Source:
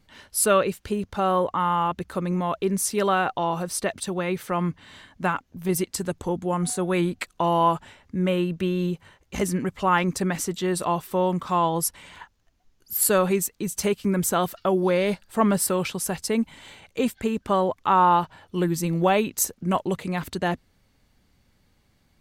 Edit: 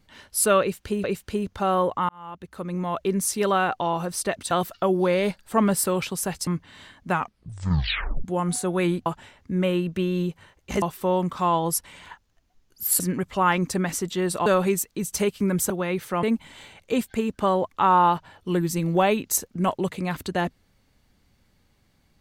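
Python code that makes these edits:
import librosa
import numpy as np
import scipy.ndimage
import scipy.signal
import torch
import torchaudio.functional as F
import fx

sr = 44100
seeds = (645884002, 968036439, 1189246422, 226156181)

y = fx.edit(x, sr, fx.repeat(start_s=0.61, length_s=0.43, count=2),
    fx.fade_in_span(start_s=1.66, length_s=0.99),
    fx.swap(start_s=4.08, length_s=0.53, other_s=14.34, other_length_s=1.96),
    fx.tape_stop(start_s=5.25, length_s=1.13),
    fx.cut(start_s=7.2, length_s=0.5),
    fx.move(start_s=9.46, length_s=1.46, to_s=13.1), tone=tone)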